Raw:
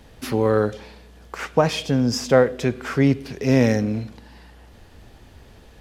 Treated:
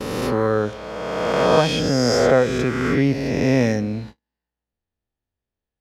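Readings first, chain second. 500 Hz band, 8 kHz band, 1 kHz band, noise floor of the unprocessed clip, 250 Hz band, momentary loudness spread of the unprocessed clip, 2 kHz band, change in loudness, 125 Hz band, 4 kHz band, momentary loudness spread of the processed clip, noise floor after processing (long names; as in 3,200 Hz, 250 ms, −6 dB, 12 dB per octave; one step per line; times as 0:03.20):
+2.5 dB, +2.5 dB, +4.0 dB, −48 dBFS, +0.5 dB, 13 LU, +3.5 dB, +1.5 dB, 0.0 dB, +4.0 dB, 11 LU, below −85 dBFS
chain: peak hold with a rise ahead of every peak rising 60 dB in 2.20 s
noise gate −33 dBFS, range −41 dB
high-shelf EQ 11,000 Hz −9 dB
level −2 dB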